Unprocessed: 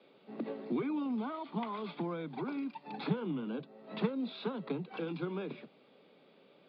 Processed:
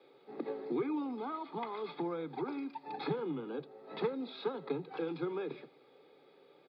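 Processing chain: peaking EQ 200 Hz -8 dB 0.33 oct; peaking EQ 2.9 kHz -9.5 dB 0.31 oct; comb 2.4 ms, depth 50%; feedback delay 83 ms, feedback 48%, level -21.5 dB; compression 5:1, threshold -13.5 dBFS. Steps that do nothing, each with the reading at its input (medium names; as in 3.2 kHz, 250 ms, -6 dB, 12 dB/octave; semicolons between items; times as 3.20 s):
compression, threshold -13.5 dBFS: peak at its input -21.5 dBFS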